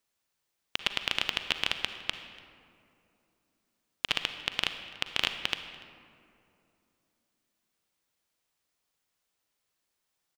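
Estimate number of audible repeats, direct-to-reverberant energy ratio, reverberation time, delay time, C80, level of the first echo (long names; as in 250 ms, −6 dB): 1, 8.0 dB, 2.8 s, 290 ms, 9.5 dB, −24.0 dB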